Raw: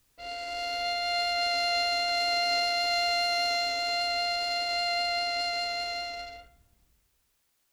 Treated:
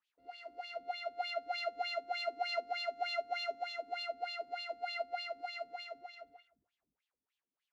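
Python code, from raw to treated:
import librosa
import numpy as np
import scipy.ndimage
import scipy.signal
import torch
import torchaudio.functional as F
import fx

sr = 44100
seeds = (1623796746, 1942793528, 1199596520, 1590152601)

y = fx.dynamic_eq(x, sr, hz=3300.0, q=0.86, threshold_db=-41.0, ratio=4.0, max_db=-4)
y = fx.wah_lfo(y, sr, hz=3.3, low_hz=220.0, high_hz=3400.0, q=4.1)
y = fx.upward_expand(y, sr, threshold_db=-49.0, expansion=1.5)
y = F.gain(torch.from_numpy(y), 3.0).numpy()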